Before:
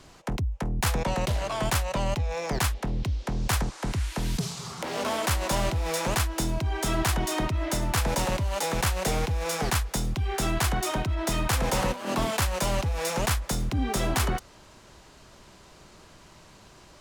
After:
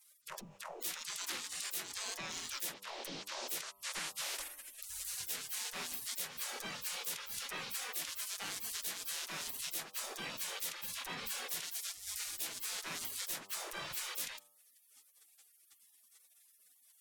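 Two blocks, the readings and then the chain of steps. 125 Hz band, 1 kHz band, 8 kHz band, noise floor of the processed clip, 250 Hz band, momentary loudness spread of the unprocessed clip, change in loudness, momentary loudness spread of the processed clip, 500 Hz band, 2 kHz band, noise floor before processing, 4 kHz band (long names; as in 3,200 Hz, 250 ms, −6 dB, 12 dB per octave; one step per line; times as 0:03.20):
−34.0 dB, −18.5 dB, −6.5 dB, −68 dBFS, −25.0 dB, 5 LU, −12.0 dB, 4 LU, −22.5 dB, −11.5 dB, −52 dBFS, −7.5 dB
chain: gate on every frequency bin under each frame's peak −30 dB weak
hum removal 98.33 Hz, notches 13
downward compressor, threshold −45 dBFS, peak gain reduction 10 dB
level +7.5 dB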